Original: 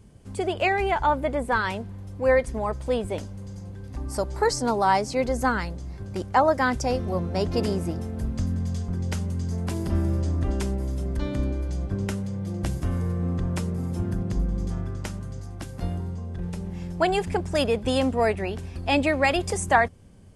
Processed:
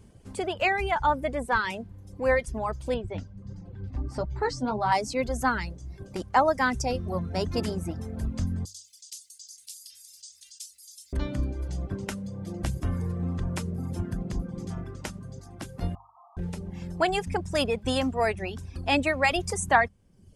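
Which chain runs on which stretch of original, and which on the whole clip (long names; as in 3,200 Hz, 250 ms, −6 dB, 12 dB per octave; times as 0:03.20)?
0:02.94–0:04.92: low-pass filter 4,600 Hz + low-shelf EQ 240 Hz +9.5 dB + flanger 1.5 Hz, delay 5.9 ms, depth 6.5 ms, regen +47%
0:08.65–0:11.13: inverse Chebyshev high-pass filter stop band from 1,000 Hz, stop band 70 dB + envelope flattener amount 50%
0:15.95–0:16.37: linear delta modulator 16 kbit/s, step −38.5 dBFS + linear-phase brick-wall band-pass 650–1,300 Hz
whole clip: mains-hum notches 50/100/150/200 Hz; dynamic equaliser 430 Hz, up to −4 dB, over −34 dBFS, Q 1; reverb reduction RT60 0.83 s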